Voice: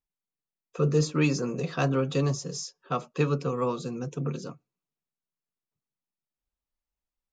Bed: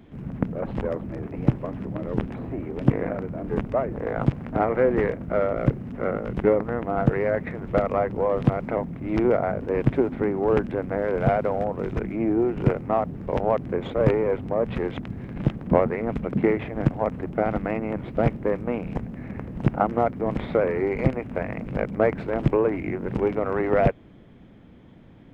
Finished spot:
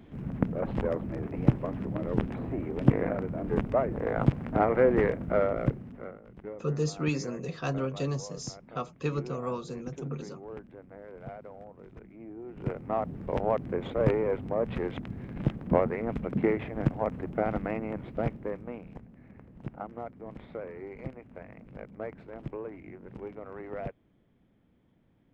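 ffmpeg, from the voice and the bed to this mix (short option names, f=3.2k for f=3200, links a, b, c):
-filter_complex "[0:a]adelay=5850,volume=-5.5dB[a];[1:a]volume=14.5dB,afade=t=out:st=5.34:d=0.82:silence=0.105925,afade=t=in:st=12.43:d=0.69:silence=0.149624,afade=t=out:st=17.6:d=1.43:silence=0.237137[b];[a][b]amix=inputs=2:normalize=0"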